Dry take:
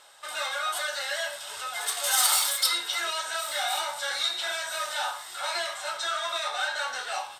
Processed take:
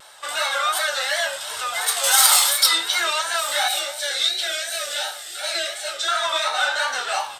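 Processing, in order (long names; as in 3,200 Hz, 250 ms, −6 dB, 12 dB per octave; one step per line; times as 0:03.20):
0:03.68–0:06.08: phaser with its sweep stopped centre 420 Hz, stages 4
pitch vibrato 2.8 Hz 80 cents
level +8 dB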